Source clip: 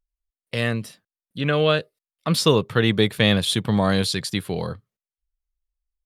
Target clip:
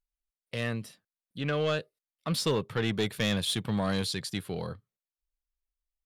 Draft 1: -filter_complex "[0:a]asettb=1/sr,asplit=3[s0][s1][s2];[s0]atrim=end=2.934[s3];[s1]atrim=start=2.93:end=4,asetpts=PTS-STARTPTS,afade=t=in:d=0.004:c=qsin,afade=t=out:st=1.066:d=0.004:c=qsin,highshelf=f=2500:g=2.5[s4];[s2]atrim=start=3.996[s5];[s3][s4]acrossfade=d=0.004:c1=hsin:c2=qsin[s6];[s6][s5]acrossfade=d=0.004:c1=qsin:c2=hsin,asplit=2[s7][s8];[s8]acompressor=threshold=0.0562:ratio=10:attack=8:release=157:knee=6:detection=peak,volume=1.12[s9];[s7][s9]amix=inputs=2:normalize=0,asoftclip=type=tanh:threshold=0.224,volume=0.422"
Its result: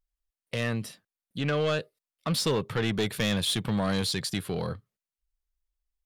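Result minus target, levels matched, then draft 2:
compression: peak gain reduction +14 dB
-filter_complex "[0:a]asettb=1/sr,asplit=3[s0][s1][s2];[s0]atrim=end=2.934[s3];[s1]atrim=start=2.93:end=4,asetpts=PTS-STARTPTS,afade=t=in:d=0.004:c=qsin,afade=t=out:st=1.066:d=0.004:c=qsin,highshelf=f=2500:g=2.5[s4];[s2]atrim=start=3.996[s5];[s3][s4]acrossfade=d=0.004:c1=hsin:c2=qsin[s6];[s6][s5]acrossfade=d=0.004:c1=qsin:c2=hsin,asoftclip=type=tanh:threshold=0.224,volume=0.422"

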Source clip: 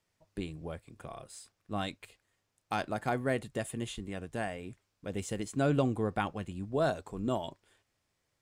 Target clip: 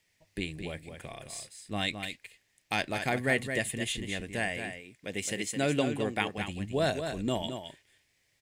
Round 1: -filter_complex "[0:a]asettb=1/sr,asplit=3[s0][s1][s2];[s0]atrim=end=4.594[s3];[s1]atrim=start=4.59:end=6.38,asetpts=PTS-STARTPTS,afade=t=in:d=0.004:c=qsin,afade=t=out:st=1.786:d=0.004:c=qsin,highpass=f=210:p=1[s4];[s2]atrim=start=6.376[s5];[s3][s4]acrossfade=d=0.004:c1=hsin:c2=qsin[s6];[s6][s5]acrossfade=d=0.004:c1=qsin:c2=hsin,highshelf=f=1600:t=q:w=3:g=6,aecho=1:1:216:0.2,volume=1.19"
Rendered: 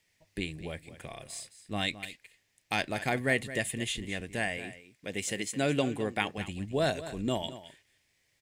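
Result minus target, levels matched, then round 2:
echo-to-direct -6.5 dB
-filter_complex "[0:a]asettb=1/sr,asplit=3[s0][s1][s2];[s0]atrim=end=4.594[s3];[s1]atrim=start=4.59:end=6.38,asetpts=PTS-STARTPTS,afade=t=in:d=0.004:c=qsin,afade=t=out:st=1.786:d=0.004:c=qsin,highpass=f=210:p=1[s4];[s2]atrim=start=6.376[s5];[s3][s4]acrossfade=d=0.004:c1=hsin:c2=qsin[s6];[s6][s5]acrossfade=d=0.004:c1=qsin:c2=hsin,highshelf=f=1600:t=q:w=3:g=6,aecho=1:1:216:0.422,volume=1.19"

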